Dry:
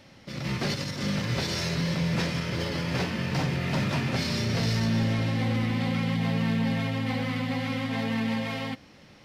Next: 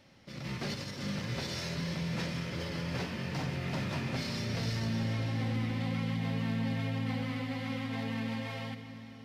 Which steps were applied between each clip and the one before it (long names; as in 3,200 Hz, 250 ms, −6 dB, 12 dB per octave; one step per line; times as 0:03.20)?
convolution reverb RT60 4.9 s, pre-delay 54 ms, DRR 9.5 dB
level −8 dB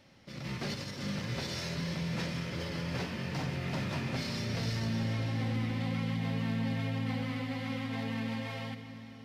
no processing that can be heard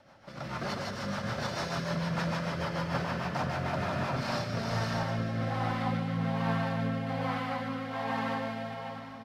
flat-topped bell 960 Hz +12.5 dB
loudspeakers that aren't time-aligned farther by 51 metres −4 dB, 86 metres −8 dB
rotating-speaker cabinet horn 6.7 Hz, later 1.2 Hz, at 0:03.66